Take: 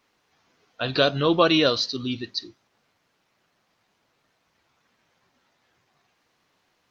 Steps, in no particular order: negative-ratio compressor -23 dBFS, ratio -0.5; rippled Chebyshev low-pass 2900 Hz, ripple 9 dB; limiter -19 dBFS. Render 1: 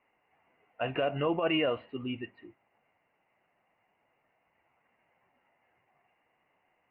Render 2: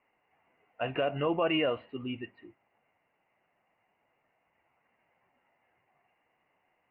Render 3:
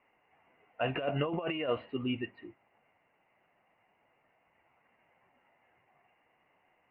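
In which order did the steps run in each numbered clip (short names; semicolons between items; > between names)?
rippled Chebyshev low-pass > negative-ratio compressor > limiter; rippled Chebyshev low-pass > limiter > negative-ratio compressor; negative-ratio compressor > rippled Chebyshev low-pass > limiter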